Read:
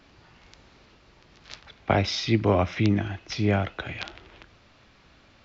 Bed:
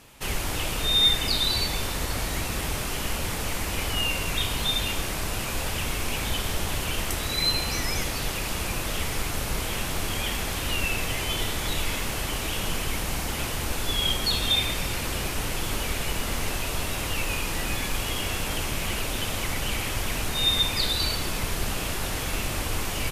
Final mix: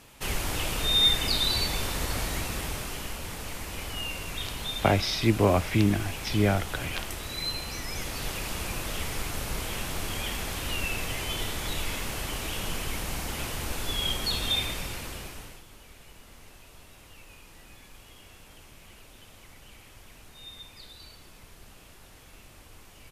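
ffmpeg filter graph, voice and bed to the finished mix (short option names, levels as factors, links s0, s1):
-filter_complex "[0:a]adelay=2950,volume=0.944[s0];[1:a]volume=1.33,afade=t=out:st=2.18:d=0.99:silence=0.473151,afade=t=in:st=7.86:d=0.42:silence=0.630957,afade=t=out:st=14.58:d=1.06:silence=0.11885[s1];[s0][s1]amix=inputs=2:normalize=0"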